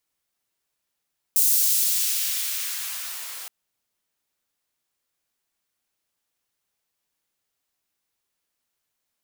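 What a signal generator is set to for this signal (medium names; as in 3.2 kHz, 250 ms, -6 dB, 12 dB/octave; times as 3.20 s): swept filtered noise white, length 2.12 s highpass, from 7.9 kHz, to 670 Hz, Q 0.71, exponential, gain ramp -21 dB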